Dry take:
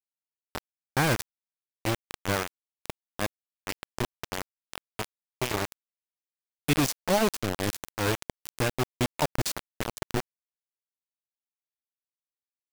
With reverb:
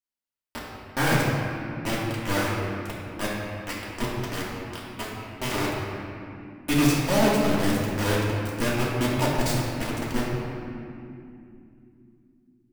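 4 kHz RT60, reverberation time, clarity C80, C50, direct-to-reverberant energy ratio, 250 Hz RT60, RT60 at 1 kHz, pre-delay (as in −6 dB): 1.6 s, 2.8 s, 0.0 dB, −1.5 dB, −8.0 dB, 4.7 s, 2.4 s, 3 ms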